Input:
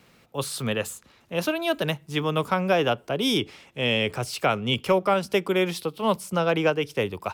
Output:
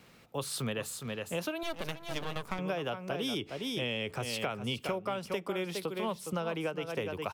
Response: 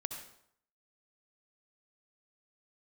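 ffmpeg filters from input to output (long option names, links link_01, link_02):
-filter_complex "[0:a]aecho=1:1:412:0.335,asettb=1/sr,asplit=3[link_01][link_02][link_03];[link_01]atrim=end=1.634[link_04];[link_02]atrim=start=1.63:end=2.59,asetpts=PTS-STARTPTS,afade=type=in:duration=0.004:curve=qsin,afade=type=out:start_time=0.956:duration=0.004:curve=qsin,aeval=exprs='max(val(0),0)':channel_layout=same[link_05];[link_03]atrim=start=2.586[link_06];[link_04][link_05]acrossfade=duration=0.004:curve1=hsin:curve2=qsin[link_07];[link_07][link_06]acrossfade=duration=0.004:curve1=qsin:curve2=hsin,acompressor=threshold=-30dB:ratio=6,volume=-1.5dB"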